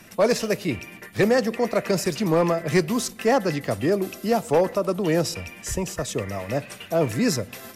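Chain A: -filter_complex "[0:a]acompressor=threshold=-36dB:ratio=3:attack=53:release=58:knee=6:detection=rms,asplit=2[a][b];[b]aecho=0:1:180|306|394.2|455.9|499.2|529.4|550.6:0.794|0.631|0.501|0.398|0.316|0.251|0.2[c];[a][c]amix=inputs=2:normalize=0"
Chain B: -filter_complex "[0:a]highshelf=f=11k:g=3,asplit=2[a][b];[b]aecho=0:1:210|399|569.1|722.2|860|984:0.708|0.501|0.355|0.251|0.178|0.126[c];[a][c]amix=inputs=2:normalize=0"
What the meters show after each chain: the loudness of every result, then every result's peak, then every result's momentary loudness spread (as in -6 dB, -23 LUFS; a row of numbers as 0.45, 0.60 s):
-29.0, -21.0 LUFS; -14.5, -6.0 dBFS; 3, 6 LU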